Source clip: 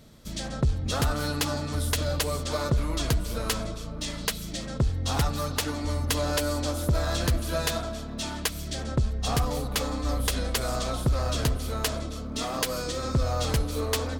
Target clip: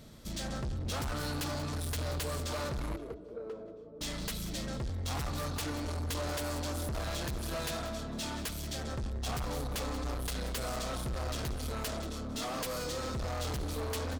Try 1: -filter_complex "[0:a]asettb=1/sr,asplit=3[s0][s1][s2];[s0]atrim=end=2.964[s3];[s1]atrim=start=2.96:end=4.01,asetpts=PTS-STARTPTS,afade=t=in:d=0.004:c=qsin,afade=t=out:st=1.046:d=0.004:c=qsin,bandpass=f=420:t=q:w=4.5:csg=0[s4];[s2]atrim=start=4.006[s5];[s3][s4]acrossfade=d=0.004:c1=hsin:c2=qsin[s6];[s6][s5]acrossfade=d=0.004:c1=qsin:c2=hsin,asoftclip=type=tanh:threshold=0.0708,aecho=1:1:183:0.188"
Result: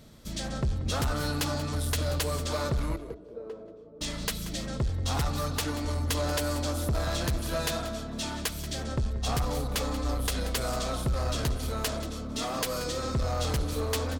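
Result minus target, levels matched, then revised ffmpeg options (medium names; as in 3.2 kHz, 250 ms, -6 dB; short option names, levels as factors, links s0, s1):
saturation: distortion -8 dB
-filter_complex "[0:a]asettb=1/sr,asplit=3[s0][s1][s2];[s0]atrim=end=2.964[s3];[s1]atrim=start=2.96:end=4.01,asetpts=PTS-STARTPTS,afade=t=in:d=0.004:c=qsin,afade=t=out:st=1.046:d=0.004:c=qsin,bandpass=f=420:t=q:w=4.5:csg=0[s4];[s2]atrim=start=4.006[s5];[s3][s4]acrossfade=d=0.004:c1=hsin:c2=qsin[s6];[s6][s5]acrossfade=d=0.004:c1=qsin:c2=hsin,asoftclip=type=tanh:threshold=0.0211,aecho=1:1:183:0.188"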